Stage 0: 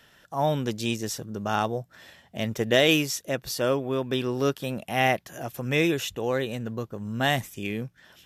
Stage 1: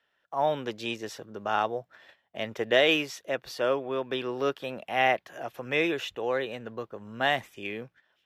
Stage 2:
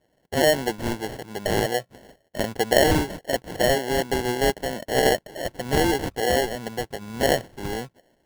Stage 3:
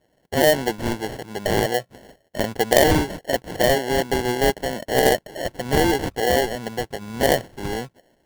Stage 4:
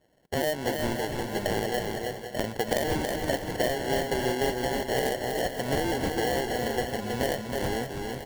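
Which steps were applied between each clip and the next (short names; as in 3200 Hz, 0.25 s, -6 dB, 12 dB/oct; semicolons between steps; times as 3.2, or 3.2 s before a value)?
gate -48 dBFS, range -15 dB; three-band isolator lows -14 dB, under 350 Hz, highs -16 dB, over 3900 Hz
in parallel at +2 dB: limiter -19 dBFS, peak gain reduction 10 dB; on the sum: sample-and-hold 36×
self-modulated delay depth 0.065 ms; gain +2.5 dB
compressor, threshold -23 dBFS, peak gain reduction 13 dB; tapped delay 0.29/0.322/0.515/0.603/0.887 s -13/-4.5/-11/-14/-13 dB; gain -2 dB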